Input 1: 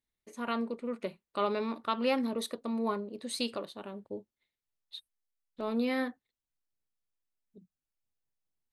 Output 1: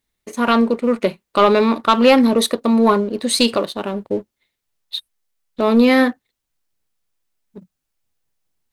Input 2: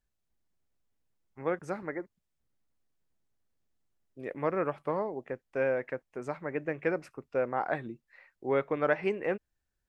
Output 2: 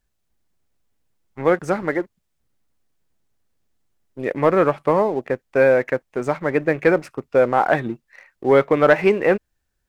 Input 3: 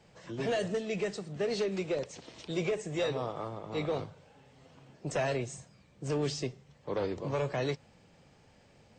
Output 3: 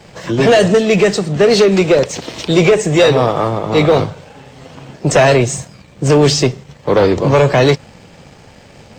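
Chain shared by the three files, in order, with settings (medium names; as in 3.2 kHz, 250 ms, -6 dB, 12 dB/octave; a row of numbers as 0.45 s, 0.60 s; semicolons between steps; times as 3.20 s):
waveshaping leveller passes 1; peak normalisation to -2 dBFS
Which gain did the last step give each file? +15.0 dB, +10.5 dB, +19.5 dB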